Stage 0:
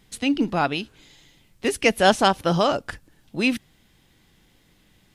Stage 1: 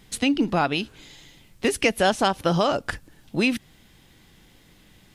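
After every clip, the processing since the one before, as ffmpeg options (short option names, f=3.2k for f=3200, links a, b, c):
-af "acompressor=threshold=-24dB:ratio=3,volume=5dB"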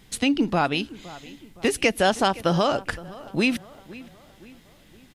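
-filter_complex "[0:a]asplit=2[a][b];[b]adelay=516,lowpass=f=2.7k:p=1,volume=-18.5dB,asplit=2[c][d];[d]adelay=516,lowpass=f=2.7k:p=1,volume=0.49,asplit=2[e][f];[f]adelay=516,lowpass=f=2.7k:p=1,volume=0.49,asplit=2[g][h];[h]adelay=516,lowpass=f=2.7k:p=1,volume=0.49[i];[a][c][e][g][i]amix=inputs=5:normalize=0"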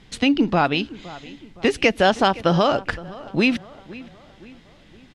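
-af "lowpass=4.9k,volume=3.5dB"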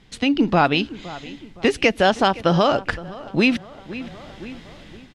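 -af "dynaudnorm=f=150:g=5:m=11.5dB,volume=-3dB"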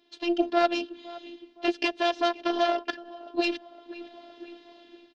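-af "aeval=exprs='0.668*(cos(1*acos(clip(val(0)/0.668,-1,1)))-cos(1*PI/2))+0.237*(cos(4*acos(clip(val(0)/0.668,-1,1)))-cos(4*PI/2))':c=same,highpass=f=220:w=0.5412,highpass=f=220:w=1.3066,equalizer=f=580:t=q:w=4:g=3,equalizer=f=1.2k:t=q:w=4:g=-9,equalizer=f=2.1k:t=q:w=4:g=-10,lowpass=f=4.8k:w=0.5412,lowpass=f=4.8k:w=1.3066,afftfilt=real='hypot(re,im)*cos(PI*b)':imag='0':win_size=512:overlap=0.75,volume=-3.5dB"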